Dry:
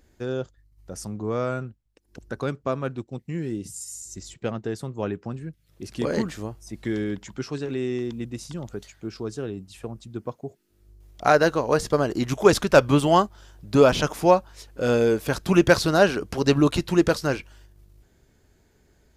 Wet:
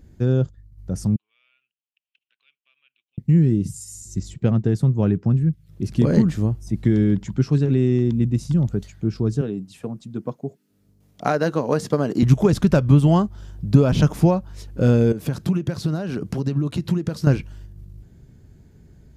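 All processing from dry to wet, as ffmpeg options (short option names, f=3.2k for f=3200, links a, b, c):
-filter_complex "[0:a]asettb=1/sr,asplit=3[a][b][c];[a]atrim=end=1.164[d];[b]atrim=start=1.16:end=3.18,asetpts=PTS-STARTPTS,afade=t=in:d=0.004:c=qsin,afade=t=out:st=2.016:d=0.004:c=qsin,acompressor=threshold=-50dB:ratio=1.5:attack=3.2:release=140:knee=1:detection=peak,asuperpass=centerf=2800:order=4:qfactor=3.5[e];[c]atrim=start=3.176[f];[d][e]acrossfade=d=0.004:c1=hsin:c2=qsin[g];[g][f]acrossfade=d=0.004:c1=qsin:c2=hsin,asettb=1/sr,asplit=3[h][i][j];[h]atrim=end=9.414[k];[i]atrim=start=9.41:end=12.23,asetpts=PTS-STARTPTS,afade=t=in:d=0.004:c=qsin,afade=t=out:st=2.816:d=0.004:c=qsin,highpass=250,bandreject=f=350:w=9.9[l];[j]atrim=start=12.226[m];[k][l]acrossfade=d=0.004:c1=hsin:c2=qsin[n];[n][m]acrossfade=d=0.004:c1=qsin:c2=hsin,asettb=1/sr,asplit=3[o][p][q];[o]atrim=end=15.124[r];[p]atrim=start=15.12:end=17.27,asetpts=PTS-STARTPTS,afade=t=in:d=0.004:c=qsin,afade=t=out:st=2.146:d=0.004:c=qsin,acompressor=threshold=-29dB:ratio=16:attack=3.2:release=140:knee=1:detection=peak,highpass=120[s];[q]atrim=start=17.266[t];[r][s]acrossfade=d=0.004:c1=hsin:c2=qsin[u];[u][t]acrossfade=d=0.004:c1=qsin:c2=hsin,lowshelf=f=250:g=10.5,acompressor=threshold=-17dB:ratio=6,equalizer=f=150:t=o:w=1.8:g=11,volume=-1dB"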